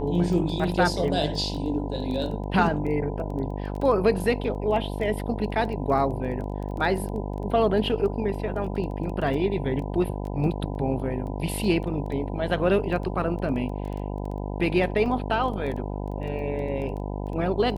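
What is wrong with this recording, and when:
buzz 50 Hz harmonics 20 -31 dBFS
crackle 11 per s -32 dBFS
15.06 s: dropout 2.2 ms

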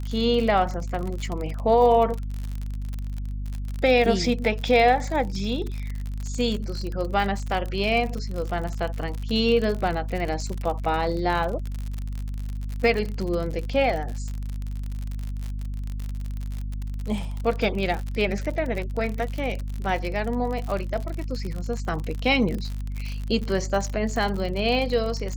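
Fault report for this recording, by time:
crackle 58 per s -28 dBFS
hum 50 Hz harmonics 5 -30 dBFS

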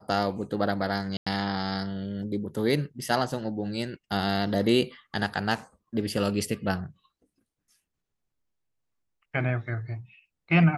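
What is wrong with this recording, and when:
1.17–1.26 s: dropout 95 ms

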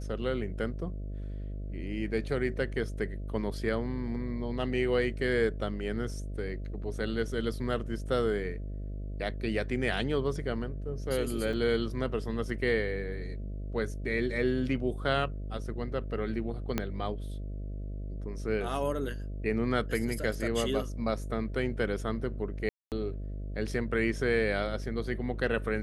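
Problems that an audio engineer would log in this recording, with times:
buzz 50 Hz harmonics 13 -37 dBFS
11.53 s: dropout 4.9 ms
16.78 s: pop -14 dBFS
22.69–22.92 s: dropout 228 ms

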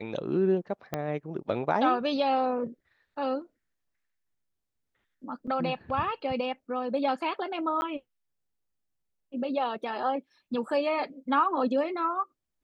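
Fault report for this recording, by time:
0.94 s: pop -16 dBFS
5.47–5.48 s: dropout 6.1 ms
7.81–7.82 s: dropout 10 ms

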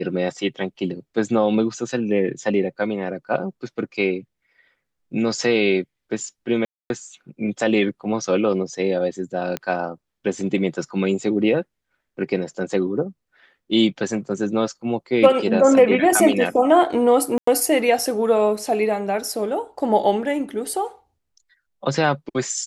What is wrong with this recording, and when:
6.65–6.90 s: dropout 251 ms
9.57 s: pop -11 dBFS
17.38–17.47 s: dropout 94 ms

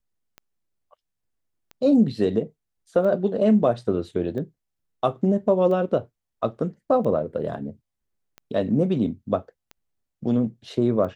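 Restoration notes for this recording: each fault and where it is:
tick 45 rpm -25 dBFS

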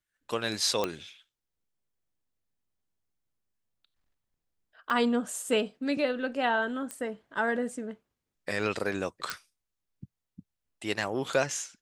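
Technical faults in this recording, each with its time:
0.84 s: pop -14 dBFS
4.90 s: dropout 3.5 ms
6.91 s: pop -21 dBFS
9.30 s: pop

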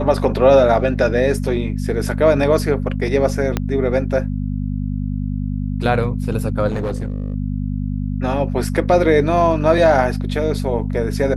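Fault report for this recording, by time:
hum 50 Hz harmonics 5 -22 dBFS
3.57 s: pop -5 dBFS
6.67–7.34 s: clipped -18 dBFS

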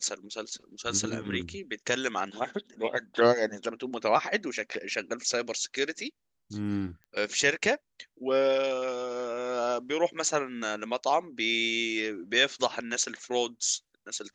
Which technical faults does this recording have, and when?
7.04 s: pop -37 dBFS

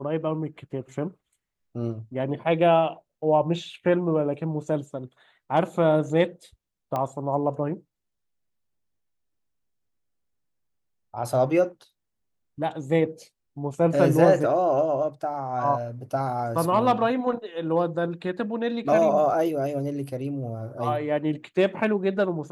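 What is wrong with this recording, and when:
6.96 s: pop -16 dBFS

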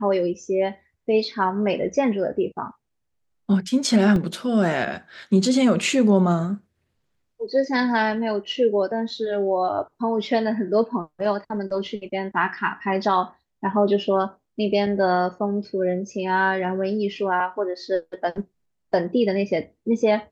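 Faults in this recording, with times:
4.16 s: dropout 2.3 ms

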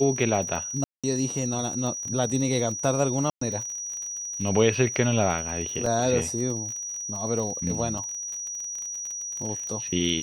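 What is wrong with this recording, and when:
crackle 39 per s -32 dBFS
whine 5.8 kHz -31 dBFS
0.84–1.04 s: dropout 196 ms
3.30–3.41 s: dropout 114 ms
5.86 s: dropout 3.1 ms
7.98 s: dropout 2.8 ms

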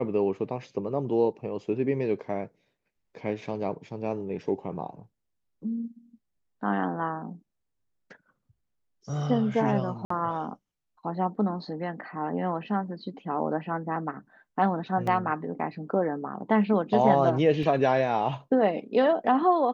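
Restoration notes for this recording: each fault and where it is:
10.05–10.10 s: dropout 54 ms
15.07 s: dropout 3.8 ms
17.63 s: dropout 2.7 ms

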